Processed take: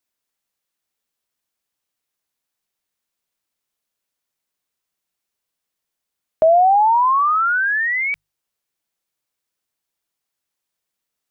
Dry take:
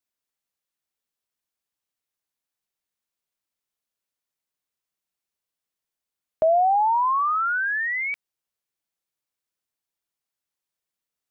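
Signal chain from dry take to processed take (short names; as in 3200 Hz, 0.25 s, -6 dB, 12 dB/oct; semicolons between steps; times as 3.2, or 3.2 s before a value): notches 50/100/150 Hz; gain +6 dB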